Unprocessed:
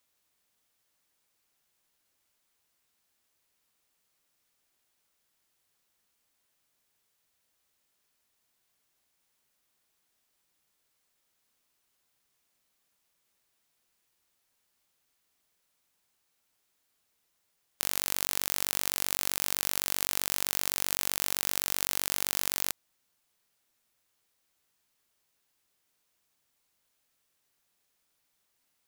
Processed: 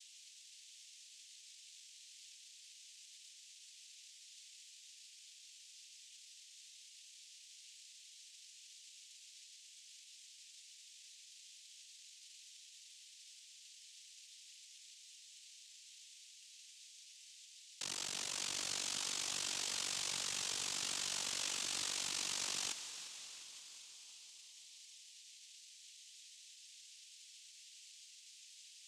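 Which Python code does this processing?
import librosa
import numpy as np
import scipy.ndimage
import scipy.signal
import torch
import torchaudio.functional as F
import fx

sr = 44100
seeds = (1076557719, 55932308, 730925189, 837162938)

y = scipy.signal.sosfilt(scipy.signal.cheby2(4, 80, 1100.0, 'highpass', fs=sr, output='sos'), x)
y = y + 0.52 * np.pad(y, (int(4.8 * sr / 1000.0), 0))[:len(y)]
y = fx.over_compress(y, sr, threshold_db=-38.0, ratio=-0.5)
y = 10.0 ** (-29.0 / 20.0) * np.tanh(y / 10.0 ** (-29.0 / 20.0))
y = fx.echo_heads(y, sr, ms=175, heads='first and second', feedback_pct=66, wet_db=-18.5)
y = fx.noise_vocoder(y, sr, seeds[0], bands=4)
y = y * librosa.db_to_amplitude(11.5)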